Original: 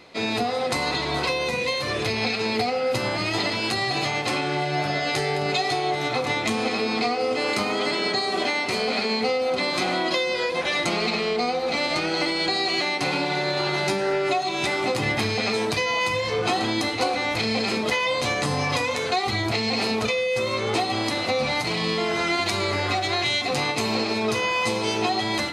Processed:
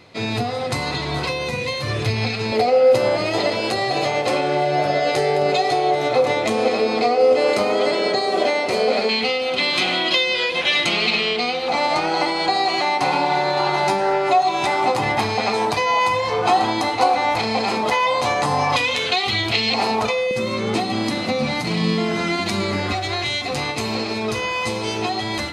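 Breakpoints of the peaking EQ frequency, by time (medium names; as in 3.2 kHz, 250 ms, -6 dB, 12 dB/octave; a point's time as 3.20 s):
peaking EQ +12.5 dB 0.9 oct
110 Hz
from 2.52 s 550 Hz
from 9.09 s 3 kHz
from 11.68 s 860 Hz
from 18.76 s 3.1 kHz
from 19.74 s 860 Hz
from 20.31 s 200 Hz
from 22.92 s 64 Hz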